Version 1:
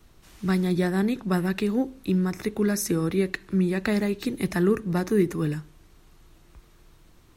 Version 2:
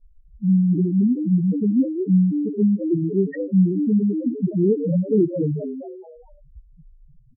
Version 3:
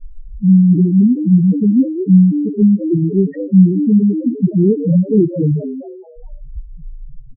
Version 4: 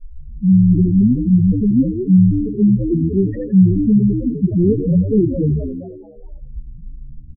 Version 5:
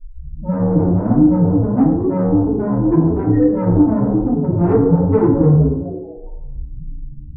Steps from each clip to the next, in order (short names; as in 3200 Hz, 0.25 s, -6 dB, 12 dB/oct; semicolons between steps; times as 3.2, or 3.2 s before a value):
frequency-shifting echo 0.213 s, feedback 46%, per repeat +110 Hz, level -7.5 dB; loudest bins only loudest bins 2; low-pass opened by the level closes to 580 Hz, open at -18 dBFS; gain +8 dB
tilt -4 dB/oct; gain -1.5 dB
frequency-shifting echo 83 ms, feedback 39%, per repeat -81 Hz, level -9 dB; gain -2.5 dB
soft clip -15.5 dBFS, distortion -9 dB; FDN reverb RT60 0.79 s, low-frequency decay 0.75×, high-frequency decay 0.25×, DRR -7.5 dB; gain -2.5 dB